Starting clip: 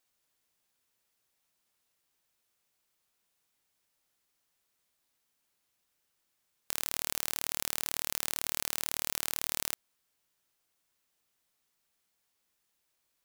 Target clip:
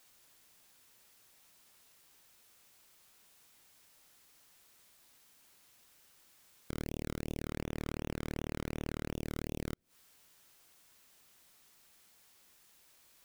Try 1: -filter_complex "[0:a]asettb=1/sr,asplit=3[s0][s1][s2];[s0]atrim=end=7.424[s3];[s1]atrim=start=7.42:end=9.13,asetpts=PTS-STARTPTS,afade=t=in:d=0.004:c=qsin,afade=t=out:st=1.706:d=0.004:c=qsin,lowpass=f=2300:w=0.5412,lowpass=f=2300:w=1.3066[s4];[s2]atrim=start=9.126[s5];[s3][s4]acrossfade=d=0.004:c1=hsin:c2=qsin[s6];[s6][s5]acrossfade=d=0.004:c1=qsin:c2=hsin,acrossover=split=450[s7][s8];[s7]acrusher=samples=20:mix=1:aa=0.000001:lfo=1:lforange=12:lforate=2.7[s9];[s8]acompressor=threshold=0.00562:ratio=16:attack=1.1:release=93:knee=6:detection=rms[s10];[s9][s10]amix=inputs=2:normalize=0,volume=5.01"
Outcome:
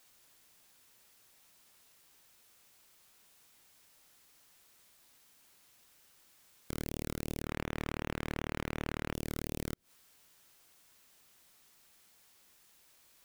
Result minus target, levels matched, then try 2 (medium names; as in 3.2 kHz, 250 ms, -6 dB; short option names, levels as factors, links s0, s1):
compression: peak gain reduction -9 dB
-filter_complex "[0:a]asettb=1/sr,asplit=3[s0][s1][s2];[s0]atrim=end=7.424[s3];[s1]atrim=start=7.42:end=9.13,asetpts=PTS-STARTPTS,afade=t=in:d=0.004:c=qsin,afade=t=out:st=1.706:d=0.004:c=qsin,lowpass=f=2300:w=0.5412,lowpass=f=2300:w=1.3066[s4];[s2]atrim=start=9.126[s5];[s3][s4]acrossfade=d=0.004:c1=hsin:c2=qsin[s6];[s6][s5]acrossfade=d=0.004:c1=qsin:c2=hsin,acrossover=split=450[s7][s8];[s7]acrusher=samples=20:mix=1:aa=0.000001:lfo=1:lforange=12:lforate=2.7[s9];[s8]acompressor=threshold=0.00188:ratio=16:attack=1.1:release=93:knee=6:detection=rms[s10];[s9][s10]amix=inputs=2:normalize=0,volume=5.01"